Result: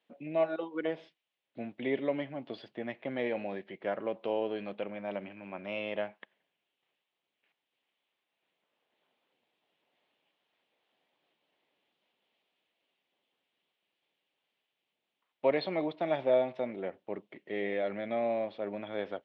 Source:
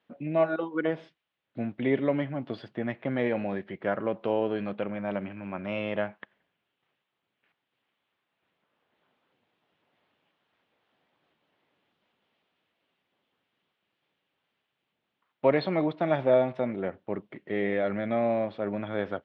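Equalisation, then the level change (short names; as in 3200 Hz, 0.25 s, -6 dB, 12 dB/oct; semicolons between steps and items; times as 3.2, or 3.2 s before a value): band-pass 1700 Hz, Q 0.64; bell 1400 Hz -14.5 dB 1.5 oct; +5.5 dB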